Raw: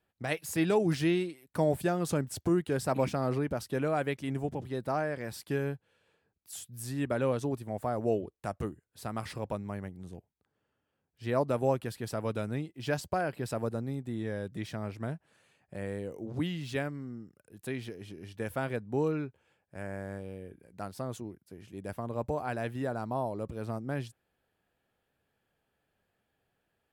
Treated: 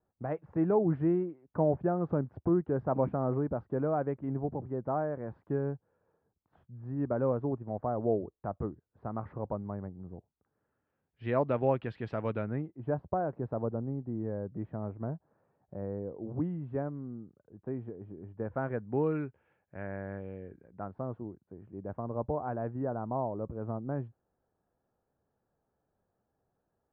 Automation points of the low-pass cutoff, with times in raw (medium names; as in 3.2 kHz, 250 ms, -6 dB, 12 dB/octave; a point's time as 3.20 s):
low-pass 24 dB/octave
10.16 s 1.2 kHz
11.30 s 2.9 kHz
12.29 s 2.9 kHz
12.82 s 1.1 kHz
18.33 s 1.1 kHz
19.02 s 2.2 kHz
20.36 s 2.2 kHz
20.99 s 1.2 kHz